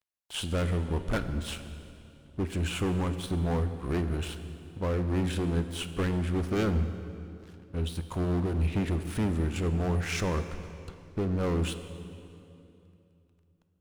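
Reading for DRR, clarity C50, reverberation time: 9.0 dB, 10.0 dB, 2.9 s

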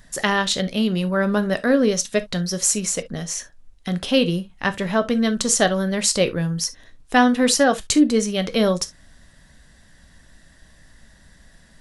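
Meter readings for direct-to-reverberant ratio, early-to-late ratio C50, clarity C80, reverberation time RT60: 10.0 dB, 19.5 dB, 60.0 dB, no single decay rate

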